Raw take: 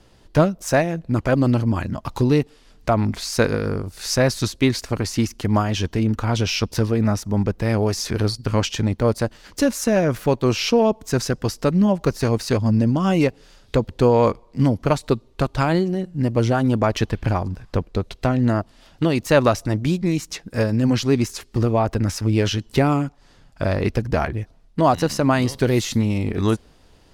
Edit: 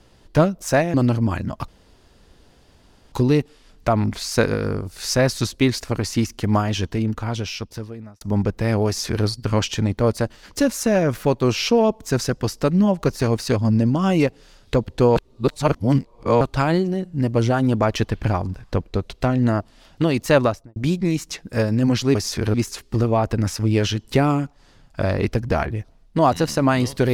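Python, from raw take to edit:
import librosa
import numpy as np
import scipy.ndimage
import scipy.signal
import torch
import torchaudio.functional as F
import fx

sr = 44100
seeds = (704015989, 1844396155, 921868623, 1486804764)

y = fx.studio_fade_out(x, sr, start_s=19.35, length_s=0.42)
y = fx.edit(y, sr, fx.cut(start_s=0.94, length_s=0.45),
    fx.insert_room_tone(at_s=2.13, length_s=1.44),
    fx.fade_out_span(start_s=5.7, length_s=1.52),
    fx.duplicate(start_s=7.88, length_s=0.39, to_s=21.16),
    fx.reverse_span(start_s=14.17, length_s=1.25), tone=tone)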